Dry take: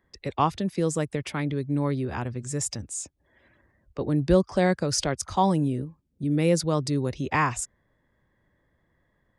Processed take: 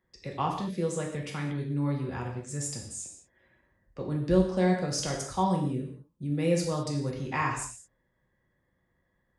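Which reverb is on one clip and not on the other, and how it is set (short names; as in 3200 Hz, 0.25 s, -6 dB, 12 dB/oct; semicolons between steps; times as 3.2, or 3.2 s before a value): non-linear reverb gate 0.24 s falling, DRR -1 dB; gain -8 dB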